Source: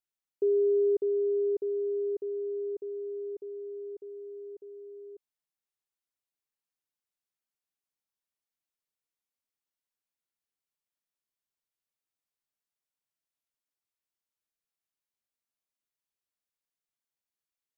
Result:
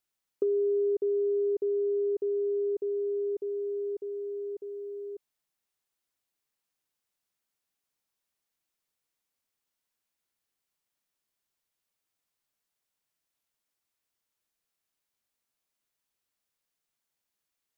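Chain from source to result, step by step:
downward compressor 4 to 1, threshold −34 dBFS, peak gain reduction 9 dB
level +7 dB

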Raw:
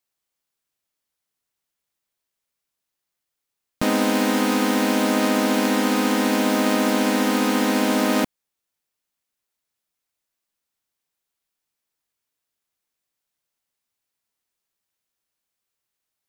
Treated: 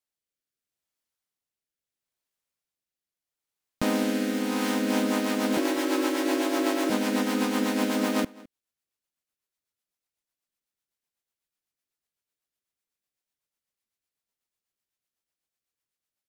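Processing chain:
0:05.57–0:06.90: frequency shifter +59 Hz
rotating-speaker cabinet horn 0.75 Hz, later 8 Hz, at 0:04.43
slap from a distant wall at 36 metres, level −22 dB
level −4 dB

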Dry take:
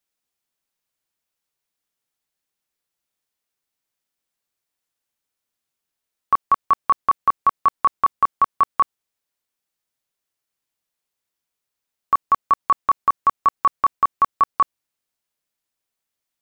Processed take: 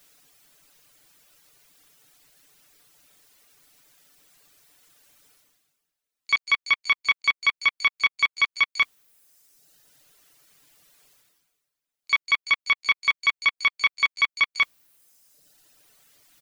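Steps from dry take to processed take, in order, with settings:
phase distortion by the signal itself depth 0.21 ms
reverb reduction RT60 0.91 s
parametric band 920 Hz −3.5 dB 0.47 octaves
comb filter 6.8 ms, depth 50%
reversed playback
upward compression, threshold −35 dBFS
reversed playback
pitch-shifted copies added +12 semitones −17 dB
level −2 dB

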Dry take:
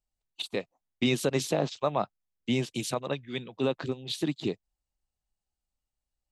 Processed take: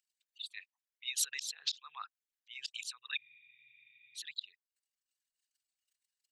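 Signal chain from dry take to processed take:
spectral envelope exaggerated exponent 2
elliptic high-pass filter 1,600 Hz, stop band 60 dB
in parallel at 0 dB: downward compressor, threshold −48 dBFS, peak gain reduction 17 dB
on the sum: volume swells 699 ms
frozen spectrum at 0:03.20, 0.96 s
level +16 dB

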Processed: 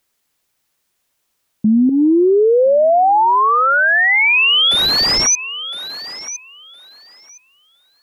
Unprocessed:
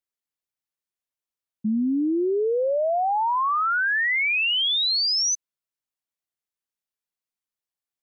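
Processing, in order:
0:04.71–0:05.27: linear delta modulator 64 kbit/s, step −39 dBFS
in parallel at +0.5 dB: compressor whose output falls as the input rises −27 dBFS, ratio −0.5
0:01.89–0:03.25: on the sum: octave-band graphic EQ 250/500/2,000/4,000 Hz −11/+11/+9/−6 dB
feedback echo with a high-pass in the loop 1,013 ms, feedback 18%, high-pass 390 Hz, level −19 dB
boost into a limiter +20 dB
level −7.5 dB

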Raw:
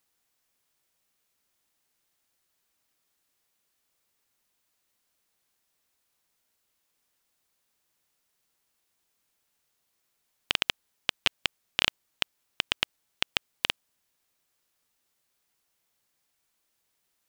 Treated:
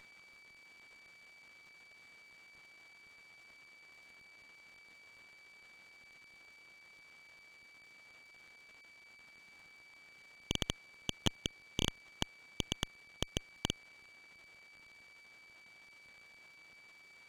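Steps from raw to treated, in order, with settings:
variable-slope delta modulation 32 kbit/s
steady tone 2,300 Hz −70 dBFS
windowed peak hold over 5 samples
level +14 dB

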